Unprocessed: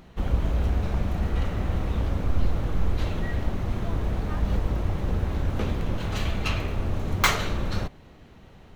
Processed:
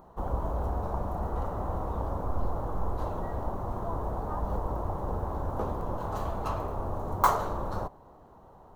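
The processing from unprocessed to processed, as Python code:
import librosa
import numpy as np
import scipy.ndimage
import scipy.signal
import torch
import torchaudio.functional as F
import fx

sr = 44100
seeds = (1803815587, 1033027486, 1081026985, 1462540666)

y = fx.curve_eq(x, sr, hz=(220.0, 1000.0, 2300.0, 13000.0), db=(0, 15, -15, 4))
y = y * 10.0 ** (-8.0 / 20.0)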